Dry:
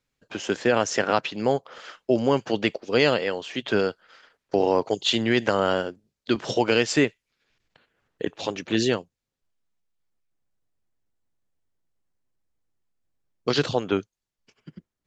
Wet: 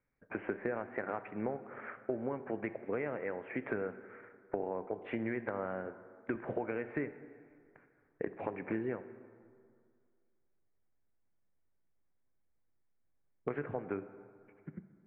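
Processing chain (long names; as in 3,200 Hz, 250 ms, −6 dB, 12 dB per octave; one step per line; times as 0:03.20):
Chebyshev low-pass filter 2,300 Hz, order 6
downward compressor 10 to 1, threshold −31 dBFS, peak gain reduction 16 dB
dense smooth reverb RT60 2.1 s, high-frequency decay 0.55×, DRR 11.5 dB
level −2 dB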